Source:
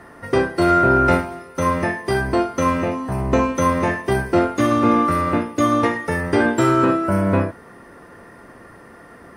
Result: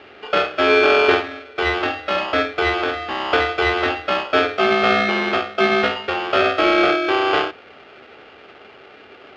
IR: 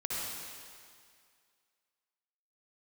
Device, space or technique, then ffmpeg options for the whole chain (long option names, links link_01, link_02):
ring modulator pedal into a guitar cabinet: -af "aeval=exprs='val(0)*sgn(sin(2*PI*970*n/s))':channel_layout=same,highpass=98,equalizer=frequency=110:width_type=q:width=4:gain=-8,equalizer=frequency=180:width_type=q:width=4:gain=-6,equalizer=frequency=380:width_type=q:width=4:gain=9,equalizer=frequency=990:width_type=q:width=4:gain=-7,lowpass=frequency=3700:width=0.5412,lowpass=frequency=3700:width=1.3066"